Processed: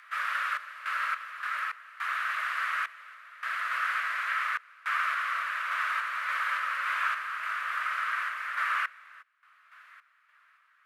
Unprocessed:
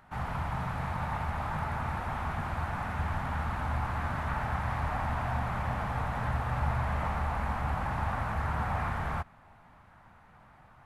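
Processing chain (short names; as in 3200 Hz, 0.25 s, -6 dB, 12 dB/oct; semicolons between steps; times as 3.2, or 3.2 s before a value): Chebyshev high-pass 850 Hz, order 2; random-step tremolo, depth 95%; frequency shift +430 Hz; gain +8 dB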